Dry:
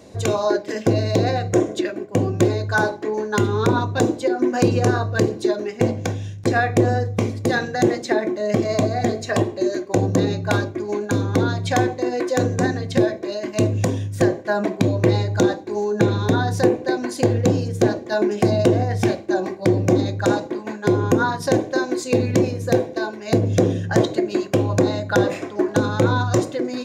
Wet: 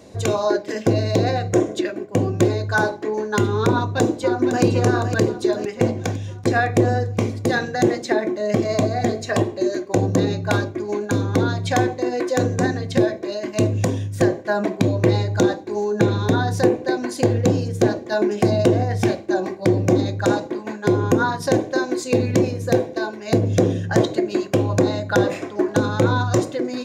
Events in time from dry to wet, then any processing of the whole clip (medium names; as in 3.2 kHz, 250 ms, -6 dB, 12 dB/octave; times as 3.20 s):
3.72–4.63 s: echo throw 510 ms, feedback 55%, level -8.5 dB